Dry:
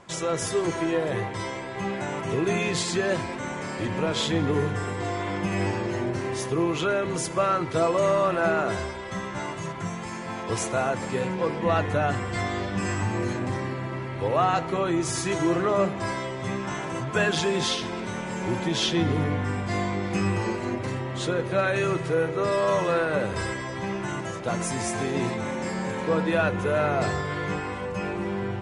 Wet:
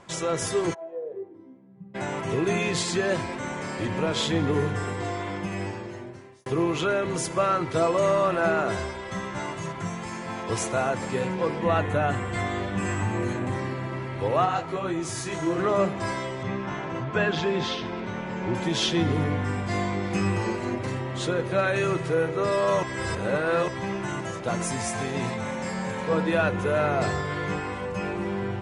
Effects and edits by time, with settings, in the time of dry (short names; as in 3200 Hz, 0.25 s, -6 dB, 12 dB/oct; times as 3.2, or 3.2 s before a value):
0.73–1.94 band-pass 770 Hz -> 140 Hz, Q 11
4.89–6.46 fade out
11.67–13.57 bell 5100 Hz -9.5 dB 0.43 oct
14.45–15.57 detuned doubles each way 42 cents -> 27 cents
16.43–18.55 air absorption 170 m
22.83–23.68 reverse
24.76–26.12 bell 330 Hz -12 dB 0.35 oct